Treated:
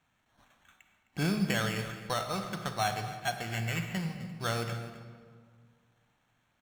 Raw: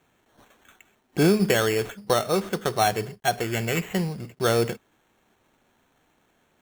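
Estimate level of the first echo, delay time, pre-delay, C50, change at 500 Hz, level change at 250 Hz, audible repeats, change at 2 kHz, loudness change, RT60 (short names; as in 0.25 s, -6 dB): -16.0 dB, 0.26 s, 29 ms, 7.0 dB, -14.5 dB, -9.0 dB, 1, -6.0 dB, -9.0 dB, 1.9 s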